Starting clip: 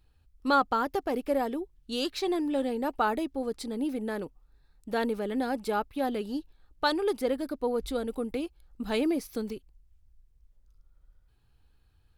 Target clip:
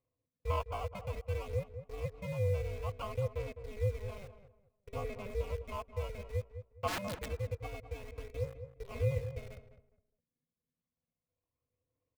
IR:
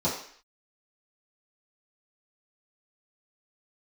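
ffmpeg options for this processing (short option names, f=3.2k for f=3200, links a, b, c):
-filter_complex "[0:a]asettb=1/sr,asplit=3[a][b][c];[a]atrim=end=8.084[d];[b]atrim=start=8.08:end=9.48,asetpts=PTS-STARTPTS,afade=t=in:d=0.004:c=qsin,afade=t=out:st=1.396:d=0.004:c=qsin,bandreject=f=55.22:t=h:w=4,bandreject=f=110.44:t=h:w=4,bandreject=f=165.66:t=h:w=4,bandreject=f=220.88:t=h:w=4,bandreject=f=276.1:t=h:w=4,bandreject=f=331.32:t=h:w=4,bandreject=f=386.54:t=h:w=4,bandreject=f=441.76:t=h:w=4,bandreject=f=496.98:t=h:w=4[e];[c]atrim=start=9.476[f];[d][e]acrossfade=d=0.004:c1=hsin:c2=qsin[g];[g][f]acrossfade=d=0.004:c1=qsin:c2=hsin,acrossover=split=3600[h][i];[h]acrusher=samples=23:mix=1:aa=0.000001[j];[i]acompressor=threshold=-55dB:ratio=6[k];[j][k]amix=inputs=2:normalize=0,asplit=3[l][m][n];[l]bandpass=f=300:t=q:w=8,volume=0dB[o];[m]bandpass=f=870:t=q:w=8,volume=-6dB[p];[n]bandpass=f=2.24k:t=q:w=8,volume=-9dB[q];[o][p][q]amix=inputs=3:normalize=0,asplit=2[r][s];[s]acrusher=bits=7:mix=0:aa=0.000001,volume=-5dB[t];[r][t]amix=inputs=2:normalize=0,aeval=exprs='val(0)*sin(2*PI*200*n/s)':c=same,asplit=3[u][v][w];[u]afade=t=out:st=6.87:d=0.02[x];[v]aeval=exprs='(mod(42.2*val(0)+1,2)-1)/42.2':c=same,afade=t=in:st=6.87:d=0.02,afade=t=out:st=7.29:d=0.02[y];[w]afade=t=in:st=7.29:d=0.02[z];[x][y][z]amix=inputs=3:normalize=0,aphaser=in_gain=1:out_gain=1:delay=1.4:decay=0.33:speed=0.58:type=sinusoidal,asplit=2[aa][ab];[ab]adelay=206,lowpass=f=1.3k:p=1,volume=-10dB,asplit=2[ac][ad];[ad]adelay=206,lowpass=f=1.3k:p=1,volume=0.28,asplit=2[ae][af];[af]adelay=206,lowpass=f=1.3k:p=1,volume=0.28[ag];[aa][ac][ae][ag]amix=inputs=4:normalize=0,volume=-1dB"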